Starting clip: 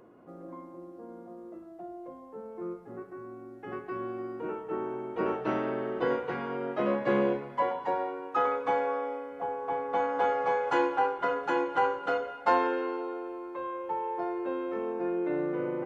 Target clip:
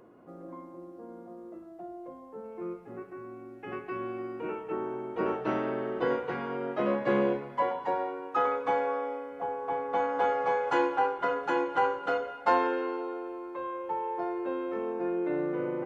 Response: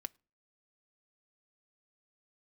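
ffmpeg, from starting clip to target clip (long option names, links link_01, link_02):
-filter_complex "[0:a]asettb=1/sr,asplit=3[link_01][link_02][link_03];[link_01]atrim=end=2.444[link_04];[link_02]atrim=start=2.44:end=4.73,asetpts=PTS-STARTPTS,afade=type=in:duration=0.004:curve=qsin,afade=type=out:start_time=2.286:duration=0.004:curve=qsin,equalizer=frequency=2500:width_type=o:width=0.47:gain=10[link_05];[link_03]atrim=start=4.726[link_06];[link_04][link_05]acrossfade=duration=0.004:curve1=hsin:curve2=qsin[link_07];[link_07][link_06]acrossfade=duration=0.004:curve1=qsin:curve2=hsin"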